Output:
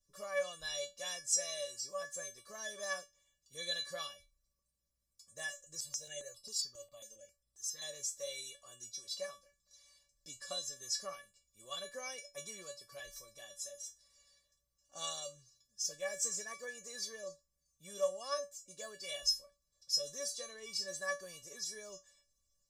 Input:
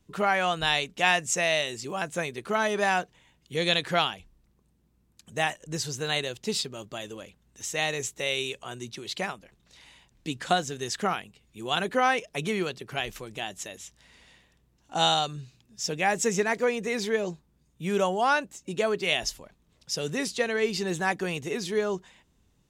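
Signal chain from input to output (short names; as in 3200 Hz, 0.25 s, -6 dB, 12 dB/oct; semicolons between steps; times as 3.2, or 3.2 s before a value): resonant high shelf 3700 Hz +9 dB, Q 3; notch 4400 Hz, Q 5.5; resonator 570 Hz, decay 0.21 s, harmonics all, mix 100%; 5.67–7.82 step phaser 7.4 Hz 220–6600 Hz; gain +1 dB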